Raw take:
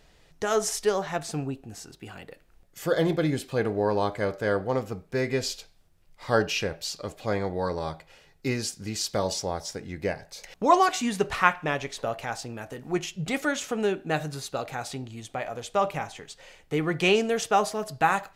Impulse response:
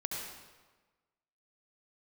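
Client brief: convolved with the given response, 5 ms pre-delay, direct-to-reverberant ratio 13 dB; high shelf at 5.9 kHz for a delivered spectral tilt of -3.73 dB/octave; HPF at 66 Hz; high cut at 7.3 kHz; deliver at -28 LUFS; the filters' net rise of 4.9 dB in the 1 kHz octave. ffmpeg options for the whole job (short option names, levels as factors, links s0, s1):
-filter_complex "[0:a]highpass=66,lowpass=7300,equalizer=f=1000:t=o:g=6,highshelf=f=5900:g=9,asplit=2[s0][s1];[1:a]atrim=start_sample=2205,adelay=5[s2];[s1][s2]afir=irnorm=-1:irlink=0,volume=0.168[s3];[s0][s3]amix=inputs=2:normalize=0,volume=0.708"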